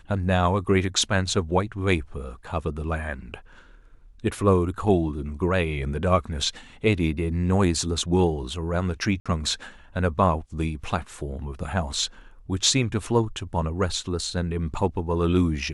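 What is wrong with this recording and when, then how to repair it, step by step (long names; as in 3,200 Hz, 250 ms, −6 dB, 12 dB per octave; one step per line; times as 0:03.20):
0:09.20–0:09.26: drop-out 56 ms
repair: repair the gap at 0:09.20, 56 ms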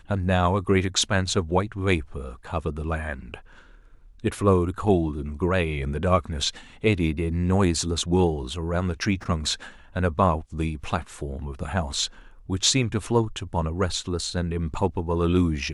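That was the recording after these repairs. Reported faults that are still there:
none of them is left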